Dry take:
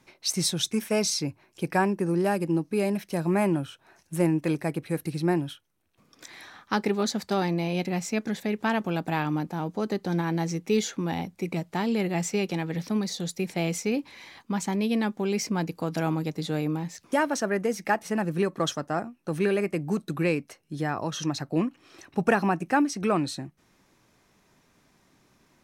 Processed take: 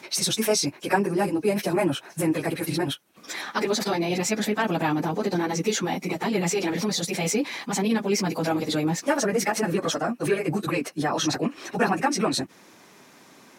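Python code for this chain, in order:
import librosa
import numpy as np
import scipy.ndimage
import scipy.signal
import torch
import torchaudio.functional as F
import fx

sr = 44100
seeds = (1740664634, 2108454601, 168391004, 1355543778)

p1 = scipy.signal.sosfilt(scipy.signal.butter(2, 220.0, 'highpass', fs=sr, output='sos'), x)
p2 = fx.over_compress(p1, sr, threshold_db=-38.0, ratio=-1.0)
p3 = p1 + (p2 * 10.0 ** (0.0 / 20.0))
p4 = fx.stretch_vocoder_free(p3, sr, factor=0.53)
y = p4 * 10.0 ** (5.5 / 20.0)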